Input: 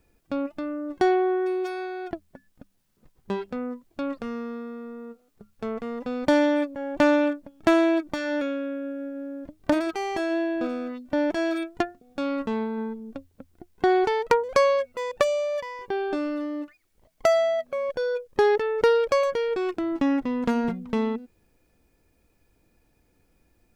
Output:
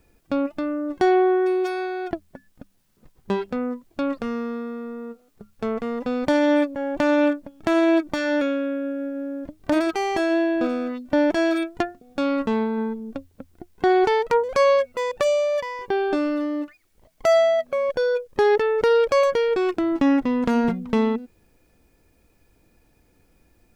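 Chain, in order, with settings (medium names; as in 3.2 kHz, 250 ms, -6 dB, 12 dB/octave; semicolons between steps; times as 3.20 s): peak limiter -15.5 dBFS, peak gain reduction 10 dB; trim +5 dB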